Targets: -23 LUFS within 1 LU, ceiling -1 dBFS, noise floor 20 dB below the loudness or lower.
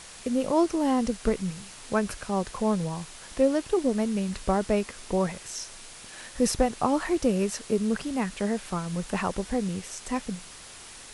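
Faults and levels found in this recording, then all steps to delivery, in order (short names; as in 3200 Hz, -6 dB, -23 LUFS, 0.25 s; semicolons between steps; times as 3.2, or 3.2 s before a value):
noise floor -46 dBFS; noise floor target -48 dBFS; loudness -28.0 LUFS; peak -10.5 dBFS; loudness target -23.0 LUFS
-> denoiser 6 dB, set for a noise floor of -46 dBFS; gain +5 dB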